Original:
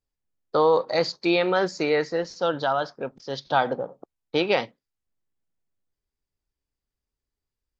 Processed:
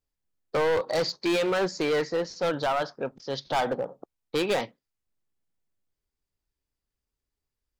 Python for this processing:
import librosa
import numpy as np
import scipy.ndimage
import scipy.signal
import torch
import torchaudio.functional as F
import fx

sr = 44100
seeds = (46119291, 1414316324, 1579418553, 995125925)

y = np.clip(x, -10.0 ** (-21.5 / 20.0), 10.0 ** (-21.5 / 20.0))